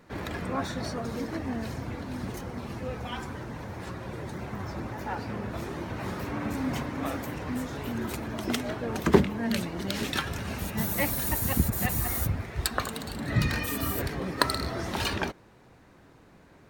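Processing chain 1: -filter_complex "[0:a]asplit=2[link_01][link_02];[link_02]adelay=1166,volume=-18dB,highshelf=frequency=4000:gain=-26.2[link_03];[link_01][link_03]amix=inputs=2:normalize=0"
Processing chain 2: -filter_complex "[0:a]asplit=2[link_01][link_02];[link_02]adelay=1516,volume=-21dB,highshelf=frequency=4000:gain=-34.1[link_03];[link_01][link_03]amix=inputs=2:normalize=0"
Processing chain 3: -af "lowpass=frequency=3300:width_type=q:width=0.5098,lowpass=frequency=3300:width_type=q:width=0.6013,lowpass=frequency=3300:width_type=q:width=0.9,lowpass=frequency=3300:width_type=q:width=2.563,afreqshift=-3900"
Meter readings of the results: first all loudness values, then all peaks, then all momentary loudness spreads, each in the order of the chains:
−31.0, −31.0, −28.0 LKFS; −2.5, −2.0, −4.5 dBFS; 12, 10, 9 LU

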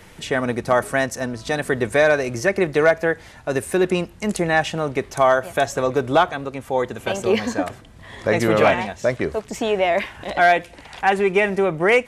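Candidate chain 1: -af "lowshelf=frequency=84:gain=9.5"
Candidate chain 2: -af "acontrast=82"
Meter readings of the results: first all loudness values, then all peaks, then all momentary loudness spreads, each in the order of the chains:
−20.0, −15.0 LKFS; −4.5, −3.0 dBFS; 9, 8 LU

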